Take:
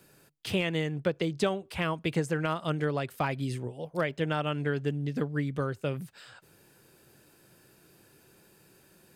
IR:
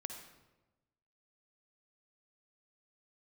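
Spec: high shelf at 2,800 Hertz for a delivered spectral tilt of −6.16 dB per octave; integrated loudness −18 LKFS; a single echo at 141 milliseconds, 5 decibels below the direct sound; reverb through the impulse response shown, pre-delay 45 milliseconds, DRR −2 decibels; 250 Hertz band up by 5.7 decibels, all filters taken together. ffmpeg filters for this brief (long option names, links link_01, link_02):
-filter_complex "[0:a]equalizer=frequency=250:width_type=o:gain=8.5,highshelf=frequency=2800:gain=-7,aecho=1:1:141:0.562,asplit=2[link_01][link_02];[1:a]atrim=start_sample=2205,adelay=45[link_03];[link_02][link_03]afir=irnorm=-1:irlink=0,volume=4dB[link_04];[link_01][link_04]amix=inputs=2:normalize=0,volume=5dB"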